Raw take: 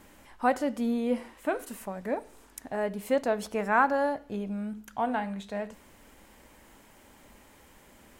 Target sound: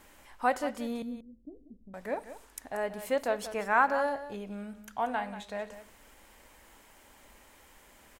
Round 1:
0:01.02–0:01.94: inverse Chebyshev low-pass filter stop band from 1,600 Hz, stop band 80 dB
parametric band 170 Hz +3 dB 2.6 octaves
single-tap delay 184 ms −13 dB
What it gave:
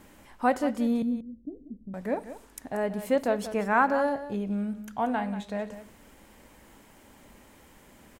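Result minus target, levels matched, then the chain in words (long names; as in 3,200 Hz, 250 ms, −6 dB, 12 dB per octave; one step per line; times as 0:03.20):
125 Hz band +7.0 dB
0:01.02–0:01.94: inverse Chebyshev low-pass filter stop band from 1,600 Hz, stop band 80 dB
parametric band 170 Hz −8.5 dB 2.6 octaves
single-tap delay 184 ms −13 dB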